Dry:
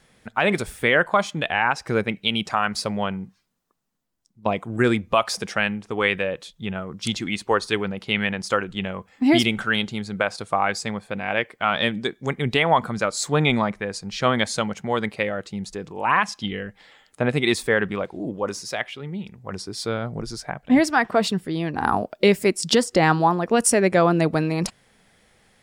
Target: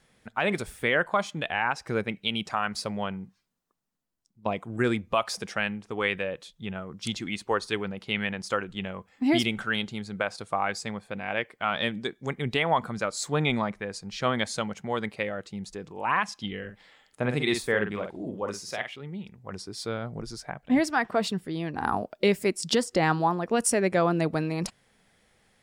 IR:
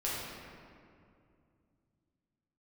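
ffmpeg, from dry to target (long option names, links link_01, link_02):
-filter_complex "[0:a]asettb=1/sr,asplit=3[link_01][link_02][link_03];[link_01]atrim=end=16.584[link_04];[link_02]atrim=start=16.58:end=18.96,asetpts=PTS-STARTPTS,afade=type=in:duration=0.004:curve=qsin,afade=type=out:start_time=2.376:duration=0.004:curve=qsin,asplit=2[link_05][link_06];[link_06]adelay=48,volume=-7dB[link_07];[link_05][link_07]amix=inputs=2:normalize=0,atrim=end_sample=104958[link_08];[link_03]atrim=start=18.956[link_09];[link_04][link_08]acrossfade=duration=0.004:curve1=hsin:curve2=qsin[link_10];[link_10][link_09]acrossfade=duration=0.004:curve1=qsin:curve2=hsin,volume=-6dB"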